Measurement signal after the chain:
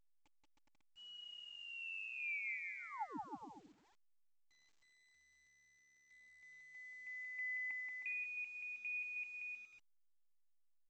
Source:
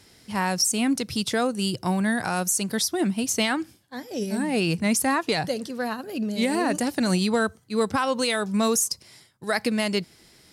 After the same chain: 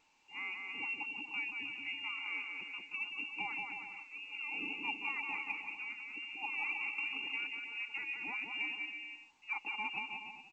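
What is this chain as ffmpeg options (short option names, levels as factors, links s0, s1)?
-filter_complex "[0:a]highpass=f=78:w=0.5412,highpass=f=78:w=1.3066,aecho=1:1:3.2:0.45,lowpass=f=2600:t=q:w=0.5098,lowpass=f=2600:t=q:w=0.6013,lowpass=f=2600:t=q:w=0.9,lowpass=f=2600:t=q:w=2.563,afreqshift=-3000,asplit=3[s0][s1][s2];[s0]bandpass=f=300:t=q:w=8,volume=1[s3];[s1]bandpass=f=870:t=q:w=8,volume=0.501[s4];[s2]bandpass=f=2240:t=q:w=8,volume=0.355[s5];[s3][s4][s5]amix=inputs=3:normalize=0,aecho=1:1:180|315|416.2|492.2|549.1:0.631|0.398|0.251|0.158|0.1,volume=0.708" -ar 16000 -c:a pcm_alaw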